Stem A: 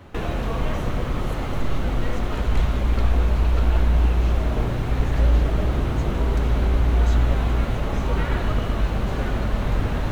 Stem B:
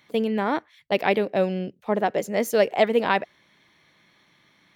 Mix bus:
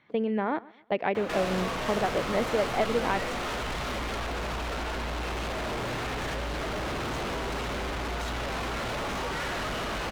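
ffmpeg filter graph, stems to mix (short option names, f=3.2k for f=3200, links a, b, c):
-filter_complex "[0:a]alimiter=limit=-13dB:level=0:latency=1:release=90,asplit=2[a][b];[b]highpass=f=720:p=1,volume=30dB,asoftclip=type=tanh:threshold=-13dB[c];[a][c]amix=inputs=2:normalize=0,lowpass=f=5.6k:p=1,volume=-6dB,asoftclip=type=tanh:threshold=-19dB,adelay=1150,volume=-9.5dB[d];[1:a]lowpass=2.3k,acompressor=threshold=-21dB:ratio=6,volume=-2dB,asplit=2[e][f];[f]volume=-21.5dB,aecho=0:1:129|258|387|516|645:1|0.35|0.122|0.0429|0.015[g];[d][e][g]amix=inputs=3:normalize=0"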